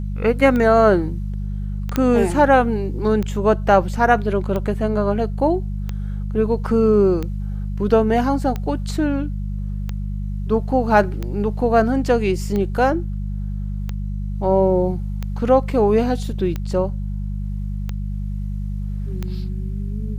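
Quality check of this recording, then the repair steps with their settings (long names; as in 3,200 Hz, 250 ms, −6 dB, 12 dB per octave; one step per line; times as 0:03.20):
mains hum 50 Hz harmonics 4 −25 dBFS
scratch tick 45 rpm −13 dBFS
0:01.96: click −7 dBFS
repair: click removal
hum removal 50 Hz, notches 4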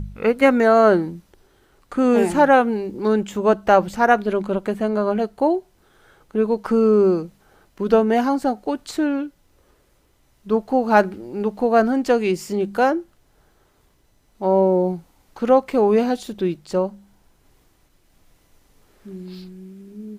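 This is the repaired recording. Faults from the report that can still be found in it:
none of them is left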